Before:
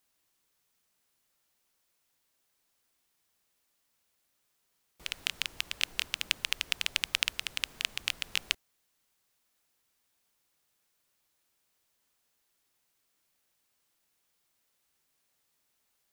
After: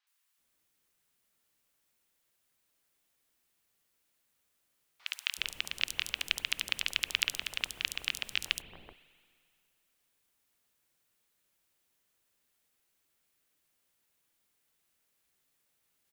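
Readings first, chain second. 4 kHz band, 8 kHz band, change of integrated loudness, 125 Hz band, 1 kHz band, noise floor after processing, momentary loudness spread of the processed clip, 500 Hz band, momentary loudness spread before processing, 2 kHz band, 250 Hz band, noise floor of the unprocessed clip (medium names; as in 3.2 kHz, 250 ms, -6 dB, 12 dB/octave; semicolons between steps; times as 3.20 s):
-1.0 dB, -1.5 dB, -1.0 dB, 0.0 dB, -2.0 dB, -77 dBFS, 5 LU, -1.0 dB, 5 LU, -0.5 dB, 0.0 dB, -77 dBFS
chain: three bands offset in time mids, highs, lows 70/380 ms, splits 900/5200 Hz; spring tank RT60 2.2 s, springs 43/58 ms, chirp 45 ms, DRR 17 dB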